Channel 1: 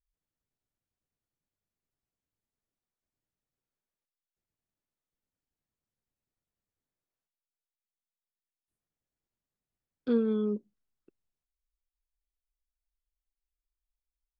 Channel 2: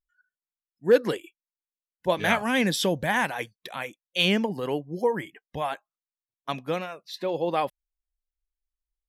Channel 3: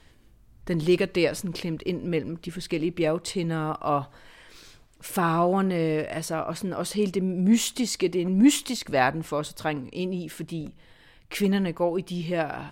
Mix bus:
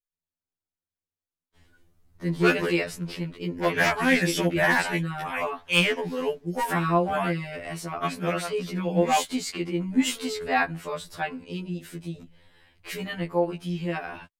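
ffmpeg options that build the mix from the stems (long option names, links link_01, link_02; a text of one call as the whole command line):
ffmpeg -i stem1.wav -i stem2.wav -i stem3.wav -filter_complex "[0:a]volume=-4dB[link_01];[1:a]equalizer=frequency=3900:width_type=o:width=0.32:gain=-13,aeval=exprs='0.15*(abs(mod(val(0)/0.15+3,4)-2)-1)':channel_layout=same,adelay=1550,volume=2dB[link_02];[2:a]adelay=1550,volume=-2dB[link_03];[link_01][link_02][link_03]amix=inputs=3:normalize=0,adynamicequalizer=threshold=0.0126:dfrequency=2000:dqfactor=0.93:tfrequency=2000:tqfactor=0.93:attack=5:release=100:ratio=0.375:range=3:mode=boostabove:tftype=bell,afftfilt=real='re*2*eq(mod(b,4),0)':imag='im*2*eq(mod(b,4),0)':win_size=2048:overlap=0.75" out.wav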